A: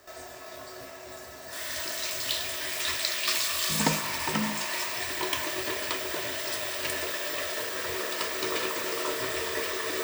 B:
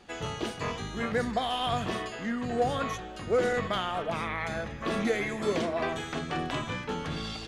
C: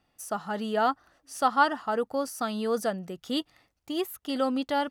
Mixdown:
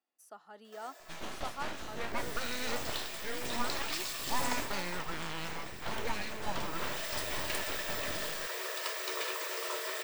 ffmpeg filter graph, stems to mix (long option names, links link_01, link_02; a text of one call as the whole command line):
ffmpeg -i stem1.wav -i stem2.wav -i stem3.wav -filter_complex "[0:a]highpass=frequency=430:width=0.5412,highpass=frequency=430:width=1.3066,adelay=650,volume=1.5dB,afade=type=out:start_time=4.58:duration=0.62:silence=0.446684,afade=type=in:start_time=6.55:duration=0.51:silence=0.251189[link_01];[1:a]aeval=exprs='abs(val(0))':channel_layout=same,adelay=1000,volume=-4.5dB[link_02];[2:a]highpass=frequency=260:width=0.5412,highpass=frequency=260:width=1.3066,volume=-19dB[link_03];[link_01][link_02][link_03]amix=inputs=3:normalize=0" out.wav